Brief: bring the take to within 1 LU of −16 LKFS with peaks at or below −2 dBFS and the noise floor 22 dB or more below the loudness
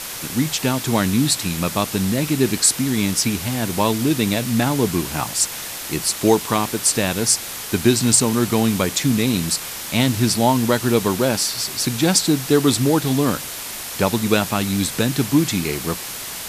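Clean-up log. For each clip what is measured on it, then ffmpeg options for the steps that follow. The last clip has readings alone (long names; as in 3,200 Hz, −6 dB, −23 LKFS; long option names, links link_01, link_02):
background noise floor −31 dBFS; target noise floor −41 dBFS; integrated loudness −19.0 LKFS; sample peak −1.5 dBFS; target loudness −16.0 LKFS
→ -af "afftdn=noise_reduction=10:noise_floor=-31"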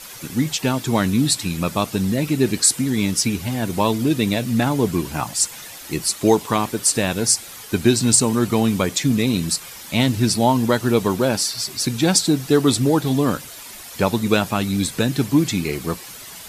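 background noise floor −38 dBFS; target noise floor −42 dBFS
→ -af "afftdn=noise_reduction=6:noise_floor=-38"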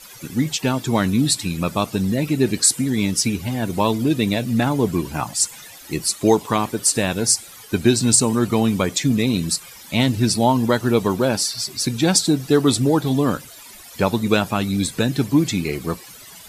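background noise floor −41 dBFS; target noise floor −42 dBFS
→ -af "afftdn=noise_reduction=6:noise_floor=-41"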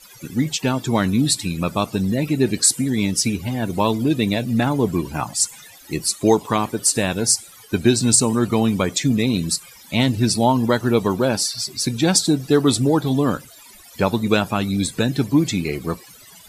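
background noise floor −45 dBFS; integrated loudness −19.5 LKFS; sample peak −1.5 dBFS; target loudness −16.0 LKFS
→ -af "volume=3.5dB,alimiter=limit=-2dB:level=0:latency=1"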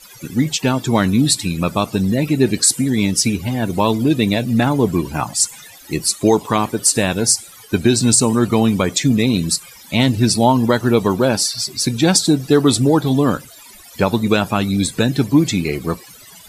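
integrated loudness −16.5 LKFS; sample peak −2.0 dBFS; background noise floor −41 dBFS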